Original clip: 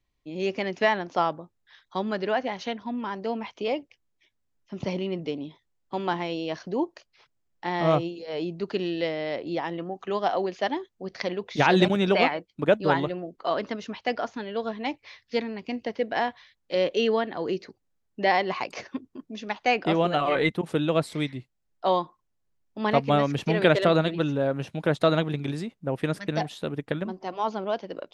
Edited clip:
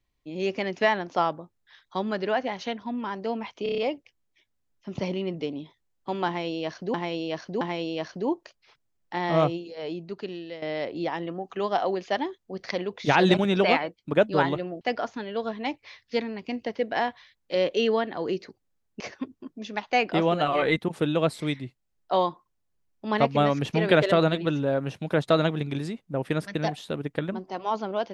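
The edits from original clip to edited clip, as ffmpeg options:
-filter_complex "[0:a]asplit=11[a][b][c][d][e][f][g][h][i][j][k];[a]atrim=end=3.662[l];[b]atrim=start=3.628:end=3.662[m];[c]atrim=start=3.628:end=3.662[n];[d]atrim=start=3.628:end=3.662[o];[e]atrim=start=3.628:end=3.662[p];[f]atrim=start=3.628:end=6.792[q];[g]atrim=start=6.118:end=6.792[r];[h]atrim=start=6.118:end=9.13,asetpts=PTS-STARTPTS,afade=t=out:st=1.852:d=1.16:silence=0.223872[s];[i]atrim=start=9.13:end=13.322,asetpts=PTS-STARTPTS,afade=t=in:d=0.004:c=hsin:silence=0.223872[t];[j]atrim=start=14.008:end=18.202[u];[k]atrim=start=18.728[v];[l][m]acrossfade=d=0.004:c1=hsin:c2=hsin[w];[w][n]acrossfade=d=0.004:c1=hsin:c2=hsin[x];[x][o]acrossfade=d=0.004:c1=hsin:c2=hsin[y];[y][p]acrossfade=d=0.004:c1=hsin:c2=hsin[z];[z][q]acrossfade=d=0.004:c1=hsin:c2=hsin[aa];[aa][r]acrossfade=d=0.004:c1=hsin:c2=hsin[ab];[s][t]concat=n=2:v=0:a=1[ac];[ab][ac]acrossfade=d=0.004:c1=hsin:c2=hsin[ad];[ad][u]acrossfade=d=0.004:c1=hsin:c2=hsin[ae];[ae][v]acrossfade=d=0.004:c1=hsin:c2=hsin"

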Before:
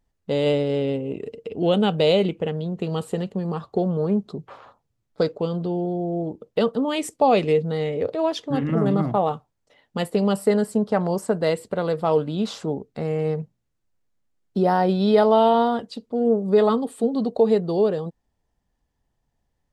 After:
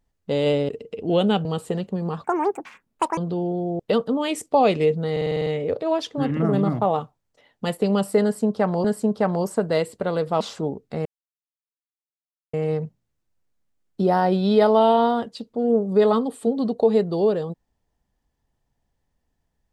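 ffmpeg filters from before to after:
-filter_complex "[0:a]asplit=16[a][b][c][d][e][f][g][h][i][j][k][l][m][n][o][p];[a]atrim=end=0.692[q];[b]atrim=start=1.218:end=1.982[r];[c]atrim=start=2.878:end=3.674[s];[d]atrim=start=3.67:end=5.51,asetpts=PTS-STARTPTS,asetrate=86877,aresample=44100[t];[e]atrim=start=5.506:end=6.132[u];[f]atrim=start=6.468:end=7.842[v];[g]atrim=start=7.788:end=7.842[w];[h]atrim=start=7.788:end=7.842[x];[i]atrim=start=7.788:end=7.842[y];[j]atrim=start=7.788:end=7.842[z];[k]atrim=start=7.788:end=7.842[aa];[l]atrim=start=7.788:end=7.842[ab];[m]atrim=start=7.788:end=11.172[ac];[n]atrim=start=10.558:end=12.122[ad];[o]atrim=start=12.448:end=13.1,asetpts=PTS-STARTPTS,afade=t=out:st=0.648:d=0.004:c=hsin,apad=pad_dur=1.48[ae];[p]atrim=start=13.1,asetpts=PTS-STARTPTS,afade=t=in:d=0.004:c=hsin[af];[q][r]acrossfade=d=0.004:c1=hsin:c2=hsin[ag];[ag][s]acrossfade=d=0.004:c1=hsin:c2=hsin[ah];[ah][t]acrossfade=d=0.004:c1=hsin:c2=hsin[ai];[ai][u]acrossfade=d=0.004:c1=hsin:c2=hsin[aj];[aj][v]acrossfade=d=0.004:c1=hsin:c2=hsin[ak];[ak][w]acrossfade=d=0.004:c1=hsin:c2=hsin[al];[al][x]acrossfade=d=0.004:c1=hsin:c2=hsin[am];[am][y]acrossfade=d=0.004:c1=hsin:c2=hsin[an];[an][z]acrossfade=d=0.004:c1=hsin:c2=hsin[ao];[ao][aa]acrossfade=d=0.004:c1=hsin:c2=hsin[ap];[ap][ab]acrossfade=d=0.004:c1=hsin:c2=hsin[aq];[aq][ac]acrossfade=d=0.004:c1=hsin:c2=hsin[ar];[ar][ad]acrossfade=d=0.004:c1=hsin:c2=hsin[as];[ae][af]concat=n=2:v=0:a=1[at];[as][at]acrossfade=d=0.004:c1=hsin:c2=hsin"

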